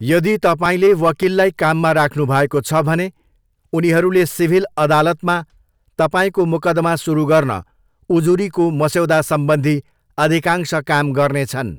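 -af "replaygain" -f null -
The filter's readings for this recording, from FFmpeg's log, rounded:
track_gain = -3.1 dB
track_peak = 0.431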